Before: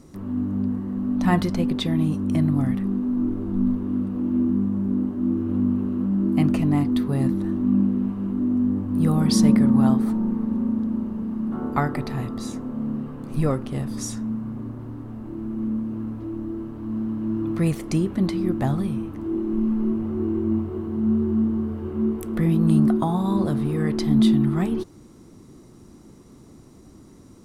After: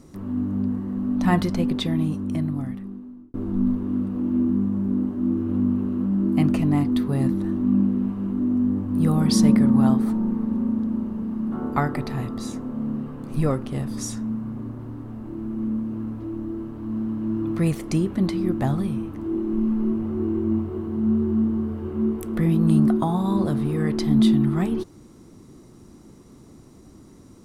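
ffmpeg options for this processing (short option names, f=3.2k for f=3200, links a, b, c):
-filter_complex "[0:a]asplit=2[a][b];[a]atrim=end=3.34,asetpts=PTS-STARTPTS,afade=t=out:st=1.77:d=1.57[c];[b]atrim=start=3.34,asetpts=PTS-STARTPTS,afade=t=in:d=0.004:c=hsin[d];[c][d]concat=n=2:v=0:a=1"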